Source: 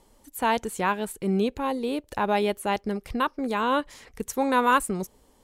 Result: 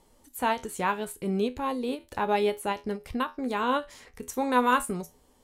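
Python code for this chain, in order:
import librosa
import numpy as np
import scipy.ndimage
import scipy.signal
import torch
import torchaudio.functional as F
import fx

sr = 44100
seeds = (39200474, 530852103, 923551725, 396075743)

y = fx.comb_fb(x, sr, f0_hz=83.0, decay_s=0.19, harmonics='all', damping=0.0, mix_pct=70)
y = fx.end_taper(y, sr, db_per_s=260.0)
y = y * librosa.db_to_amplitude(2.5)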